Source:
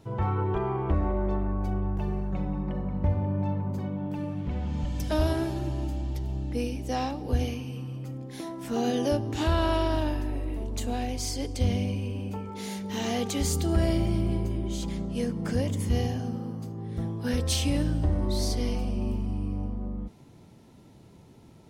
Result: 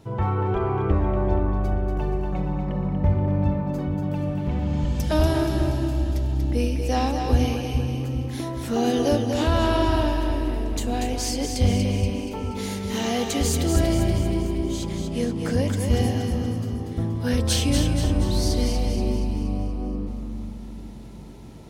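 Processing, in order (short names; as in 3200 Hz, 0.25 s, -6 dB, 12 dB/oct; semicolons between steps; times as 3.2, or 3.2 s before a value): in parallel at 0 dB: vocal rider 2 s; on the sum: split-band echo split 360 Hz, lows 0.412 s, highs 0.238 s, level -5.5 dB; gain -2 dB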